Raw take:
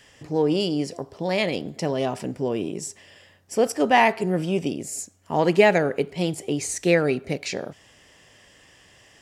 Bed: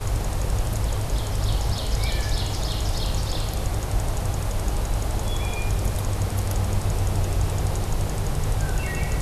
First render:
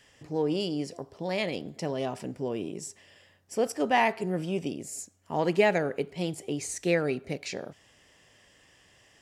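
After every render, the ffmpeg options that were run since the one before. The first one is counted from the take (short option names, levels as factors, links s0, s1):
-af "volume=0.473"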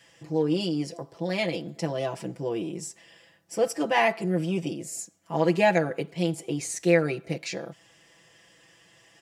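-af "highpass=78,aecho=1:1:6:0.91"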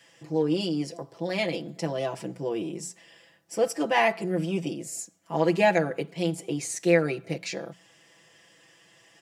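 -af "highpass=110,bandreject=f=60:t=h:w=6,bandreject=f=120:t=h:w=6,bandreject=f=180:t=h:w=6"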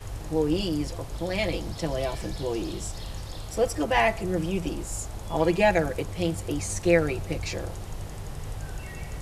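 -filter_complex "[1:a]volume=0.266[s0];[0:a][s0]amix=inputs=2:normalize=0"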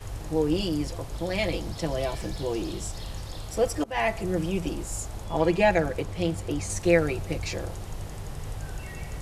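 -filter_complex "[0:a]asettb=1/sr,asplit=3[s0][s1][s2];[s0]atrim=end=2.214[s3];[s1]atrim=start=2.21:end=2.63,asetpts=PTS-STARTPTS,afade=t=in:d=0.004:c=qsin,afade=t=out:st=0.416:d=0.004:c=qsin,aeval=exprs='val(0)*gte(abs(val(0)),0.00188)':c=same[s4];[s2]atrim=start=2.626[s5];[s3][s4]acrossfade=d=0.004:c1=hsin:c2=qsin[s6];[s6][s5]acrossfade=d=0.004:c1=qsin:c2=hsin,asettb=1/sr,asplit=3[s7][s8][s9];[s7]atrim=end=5.244[s10];[s8]atrim=start=5.24:end=6.7,asetpts=PTS-STARTPTS,afade=t=in:d=0.004:c=qsin,afade=t=out:st=1.456:d=0.004:c=qsin,highshelf=f=7900:g=-7[s11];[s9]atrim=start=6.696[s12];[s10][s11]acrossfade=d=0.004:c1=hsin:c2=qsin[s13];[s13][s12]acrossfade=d=0.004:c1=qsin:c2=hsin,asplit=2[s14][s15];[s14]atrim=end=3.84,asetpts=PTS-STARTPTS,afade=t=out:st=3.836:d=0.004:c=hsin:silence=0.0668344[s16];[s15]atrim=start=3.84,asetpts=PTS-STARTPTS,afade=t=in:d=0.44:c=qsin:silence=0.0668344[s17];[s16][s17]concat=n=2:v=0:a=1"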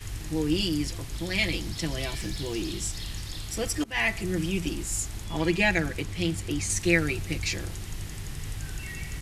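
-af "firequalizer=gain_entry='entry(330,0);entry(520,-11);entry(1900,5)':delay=0.05:min_phase=1"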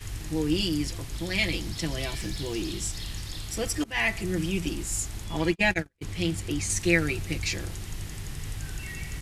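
-filter_complex "[0:a]asplit=3[s0][s1][s2];[s0]afade=t=out:st=5.51:d=0.02[s3];[s1]agate=range=0.00631:threshold=0.0562:ratio=16:release=100:detection=peak,afade=t=in:st=5.51:d=0.02,afade=t=out:st=6.01:d=0.02[s4];[s2]afade=t=in:st=6.01:d=0.02[s5];[s3][s4][s5]amix=inputs=3:normalize=0"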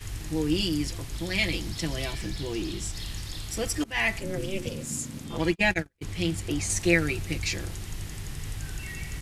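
-filter_complex "[0:a]asettb=1/sr,asplit=3[s0][s1][s2];[s0]atrim=end=2.124[s3];[s1]atrim=start=2.12:end=2.96,asetpts=PTS-STARTPTS,afade=t=in:d=0.004:c=qsin,afade=t=out:st=0.836:d=0.004:c=qsin,highshelf=f=5000:g=-5[s4];[s2]atrim=start=2.956[s5];[s3][s4]acrossfade=d=0.004:c1=hsin:c2=qsin[s6];[s6][s5]acrossfade=d=0.004:c1=qsin:c2=hsin,asplit=3[s7][s8][s9];[s7]afade=t=out:st=4.19:d=0.02[s10];[s8]aeval=exprs='val(0)*sin(2*PI*190*n/s)':c=same,afade=t=in:st=4.19:d=0.02,afade=t=out:st=5.38:d=0.02[s11];[s9]afade=t=in:st=5.38:d=0.02[s12];[s10][s11][s12]amix=inputs=3:normalize=0,asettb=1/sr,asplit=3[s13][s14][s15];[s13]atrim=end=6.484[s16];[s14]atrim=start=6.48:end=6.94,asetpts=PTS-STARTPTS,afade=t=in:d=0.004:c=qsin,afade=t=out:st=0.456:d=0.004:c=qsin,equalizer=f=650:w=1.5:g=5.5[s17];[s15]atrim=start=6.936[s18];[s16][s17]acrossfade=d=0.004:c1=hsin:c2=qsin[s19];[s19][s18]acrossfade=d=0.004:c1=qsin:c2=hsin"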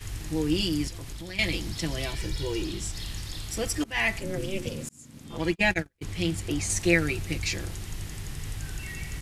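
-filter_complex "[0:a]asettb=1/sr,asplit=3[s0][s1][s2];[s0]atrim=end=0.884[s3];[s1]atrim=start=0.88:end=1.39,asetpts=PTS-STARTPTS,afade=t=in:d=0.004:c=qsin,afade=t=out:st=0.506:d=0.004:c=qsin,acompressor=threshold=0.02:ratio=6:attack=3.2:release=140:knee=1:detection=peak[s4];[s2]atrim=start=1.386[s5];[s3][s4]acrossfade=d=0.004:c1=hsin:c2=qsin[s6];[s6][s5]acrossfade=d=0.004:c1=qsin:c2=hsin,asettb=1/sr,asplit=3[s7][s8][s9];[s7]atrim=end=2.184[s10];[s8]atrim=start=2.18:end=2.65,asetpts=PTS-STARTPTS,afade=t=in:d=0.004:c=qsin,afade=t=out:st=0.466:d=0.004:c=qsin,aecho=1:1:2.1:0.61,atrim=end_sample=20727[s11];[s9]atrim=start=2.646[s12];[s10][s11]acrossfade=d=0.004:c1=hsin:c2=qsin[s13];[s13][s12]acrossfade=d=0.004:c1=qsin:c2=hsin,asplit=2[s14][s15];[s14]atrim=end=4.89,asetpts=PTS-STARTPTS,afade=t=out:st=4.886:d=0.004:c=hsin[s16];[s15]atrim=start=4.89,asetpts=PTS-STARTPTS,afade=t=in:d=0.71[s17];[s16][s17]concat=n=2:v=0:a=1"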